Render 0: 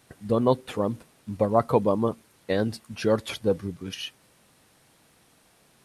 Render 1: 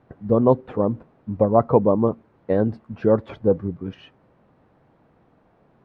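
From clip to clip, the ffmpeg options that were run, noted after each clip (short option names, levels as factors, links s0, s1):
-af "lowpass=1000,volume=1.88"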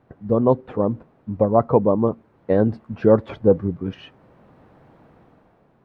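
-af "dynaudnorm=f=140:g=9:m=2.66,volume=0.891"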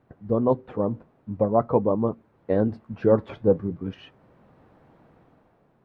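-af "flanger=delay=0.4:depth=7.9:regen=-79:speed=0.46:shape=triangular"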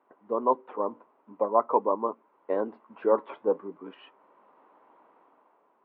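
-af "highpass=f=340:w=0.5412,highpass=f=340:w=1.3066,equalizer=f=340:t=q:w=4:g=-4,equalizer=f=490:t=q:w=4:g=-5,equalizer=f=710:t=q:w=4:g=-4,equalizer=f=1000:t=q:w=4:g=9,equalizer=f=1700:t=q:w=4:g=-6,equalizer=f=2400:t=q:w=4:g=-3,lowpass=f=2800:w=0.5412,lowpass=f=2800:w=1.3066"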